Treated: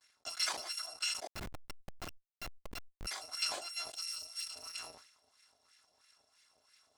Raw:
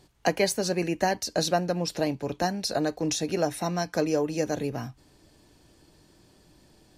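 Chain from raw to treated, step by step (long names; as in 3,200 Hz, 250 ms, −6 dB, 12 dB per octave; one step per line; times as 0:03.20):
samples in bit-reversed order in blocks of 256 samples
high-pass filter 52 Hz 6 dB per octave
noise gate with hold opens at −51 dBFS
flat-topped bell 6,000 Hz +11.5 dB
in parallel at +2.5 dB: downward compressor 4 to 1, threshold −31 dBFS, peak gain reduction 17.5 dB
on the sum: auto-filter band-pass sine 3 Hz 620–2,000 Hz
0:01.27–0:03.07: comparator with hysteresis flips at −28 dBFS
0:03.90–0:04.54: octave-band graphic EQ 125/250/500/1,000/2,000 Hz −8/−7/−8/−9/−4 dB
level that may fall only so fast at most 75 dB per second
level −5 dB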